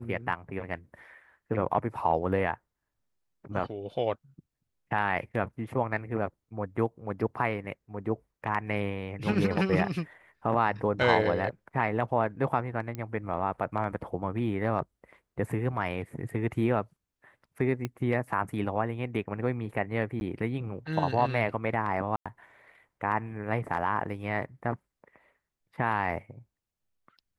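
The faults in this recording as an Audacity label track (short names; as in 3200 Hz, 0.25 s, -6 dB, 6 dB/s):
12.950000	12.950000	pop -23 dBFS
17.850000	17.850000	pop -18 dBFS
20.200000	20.210000	gap 11 ms
22.160000	22.260000	gap 96 ms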